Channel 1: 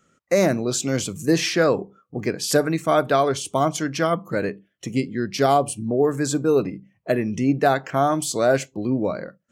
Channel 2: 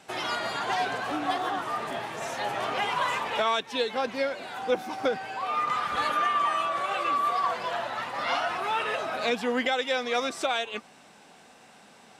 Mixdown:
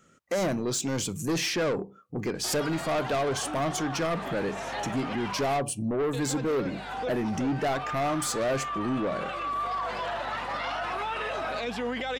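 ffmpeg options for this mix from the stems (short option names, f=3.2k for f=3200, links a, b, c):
-filter_complex "[0:a]volume=2dB[a];[1:a]highshelf=f=8.7k:g=-9,alimiter=level_in=1.5dB:limit=-24dB:level=0:latency=1:release=16,volume=-1.5dB,aeval=exprs='val(0)+0.00316*(sin(2*PI*50*n/s)+sin(2*PI*2*50*n/s)/2+sin(2*PI*3*50*n/s)/3+sin(2*PI*4*50*n/s)/4+sin(2*PI*5*50*n/s)/5)':c=same,adelay=2350,volume=2dB,asplit=3[b][c][d];[b]atrim=end=5.58,asetpts=PTS-STARTPTS,afade=t=out:st=5.576:d=0.004:c=hsin[e];[c]atrim=start=5.58:end=6.13,asetpts=PTS-STARTPTS,volume=0[f];[d]atrim=start=6.13,asetpts=PTS-STARTPTS,afade=t=in:d=0.004:c=hsin[g];[e][f][g]concat=n=3:v=0:a=1[h];[a][h]amix=inputs=2:normalize=0,asoftclip=type=tanh:threshold=-19dB,alimiter=limit=-23.5dB:level=0:latency=1:release=367"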